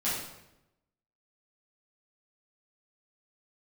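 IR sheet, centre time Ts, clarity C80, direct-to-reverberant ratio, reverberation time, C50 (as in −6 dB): 61 ms, 4.5 dB, −10.5 dB, 0.90 s, 1.0 dB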